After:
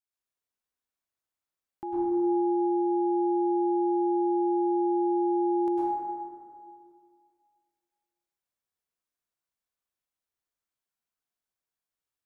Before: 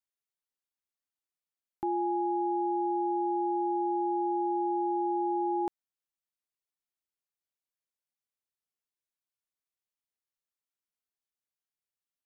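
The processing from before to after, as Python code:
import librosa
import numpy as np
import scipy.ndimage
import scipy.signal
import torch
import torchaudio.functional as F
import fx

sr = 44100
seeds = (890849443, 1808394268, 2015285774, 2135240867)

y = fx.rev_plate(x, sr, seeds[0], rt60_s=2.2, hf_ratio=0.35, predelay_ms=90, drr_db=-7.5)
y = F.gain(torch.from_numpy(y), -4.5).numpy()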